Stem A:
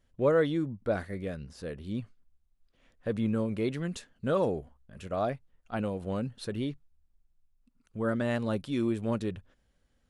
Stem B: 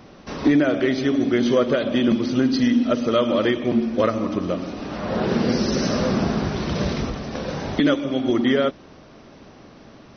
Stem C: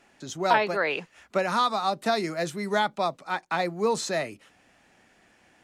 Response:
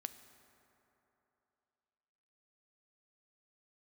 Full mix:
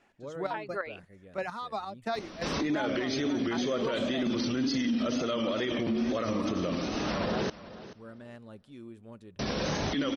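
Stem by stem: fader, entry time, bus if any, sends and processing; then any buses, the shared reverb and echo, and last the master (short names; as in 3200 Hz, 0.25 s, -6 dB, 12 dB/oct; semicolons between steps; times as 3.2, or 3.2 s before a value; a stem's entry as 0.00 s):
-19.0 dB, 0.00 s, send -10.5 dB, no echo send, dry
-1.0 dB, 2.15 s, muted 7.5–9.39, no send, echo send -18.5 dB, high shelf 2300 Hz +8 dB; limiter -18 dBFS, peak gain reduction 12.5 dB; wow and flutter 73 cents
-5.0 dB, 0.00 s, no send, no echo send, reverb removal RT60 0.72 s; high shelf 5900 Hz -11 dB; chopper 2.9 Hz, depth 65%, duty 35%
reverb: on, RT60 3.1 s, pre-delay 4 ms
echo: feedback echo 0.432 s, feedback 17%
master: limiter -22 dBFS, peak gain reduction 7.5 dB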